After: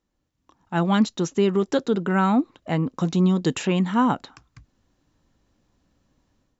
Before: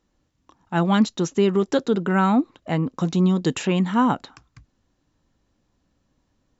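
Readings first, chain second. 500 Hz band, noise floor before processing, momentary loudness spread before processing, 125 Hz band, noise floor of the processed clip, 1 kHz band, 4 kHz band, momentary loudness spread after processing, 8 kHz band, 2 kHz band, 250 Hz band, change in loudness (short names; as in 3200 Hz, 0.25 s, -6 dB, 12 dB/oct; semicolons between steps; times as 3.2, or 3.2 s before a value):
-1.0 dB, -71 dBFS, 6 LU, -1.0 dB, -75 dBFS, -1.0 dB, -1.0 dB, 6 LU, n/a, -1.0 dB, -1.0 dB, -1.0 dB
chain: AGC gain up to 9.5 dB; gain -7.5 dB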